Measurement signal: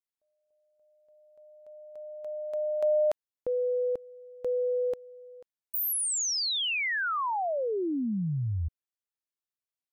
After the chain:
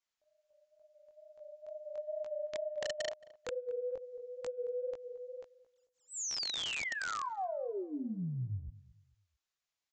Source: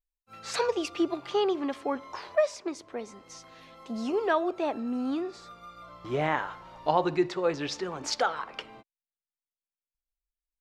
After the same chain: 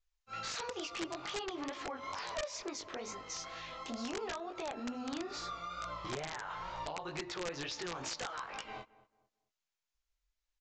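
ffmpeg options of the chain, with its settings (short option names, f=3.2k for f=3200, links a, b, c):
-filter_complex "[0:a]equalizer=f=240:t=o:w=2.4:g=-9.5,acompressor=threshold=-44dB:ratio=10:attack=4.1:release=106:knee=1:detection=rms,flanger=delay=17:depth=7:speed=2.2,aresample=16000,aeval=exprs='(mod(126*val(0)+1,2)-1)/126':c=same,aresample=44100,asplit=2[a][b];[b]adelay=222,lowpass=f=1.3k:p=1,volume=-18dB,asplit=2[c][d];[d]adelay=222,lowpass=f=1.3k:p=1,volume=0.32,asplit=2[e][f];[f]adelay=222,lowpass=f=1.3k:p=1,volume=0.32[g];[a][c][e][g]amix=inputs=4:normalize=0,volume=10.5dB"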